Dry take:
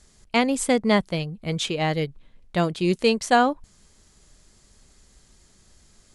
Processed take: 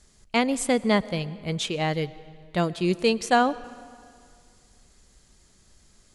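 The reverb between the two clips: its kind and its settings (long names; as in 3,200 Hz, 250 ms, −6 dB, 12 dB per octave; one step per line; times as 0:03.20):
comb and all-pass reverb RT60 2.2 s, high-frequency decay 0.8×, pre-delay 70 ms, DRR 18.5 dB
level −2 dB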